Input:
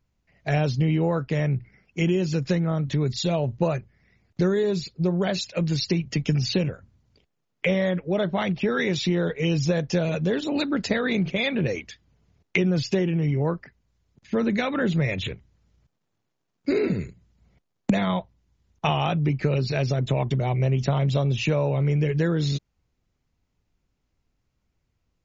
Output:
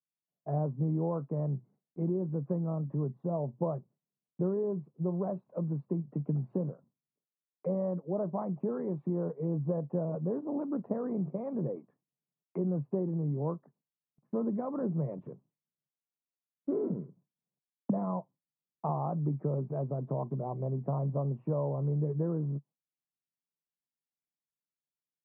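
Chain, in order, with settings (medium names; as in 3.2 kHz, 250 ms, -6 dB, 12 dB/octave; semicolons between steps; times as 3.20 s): Chebyshev band-pass 140–1100 Hz, order 4; gate with hold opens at -50 dBFS; trim -8 dB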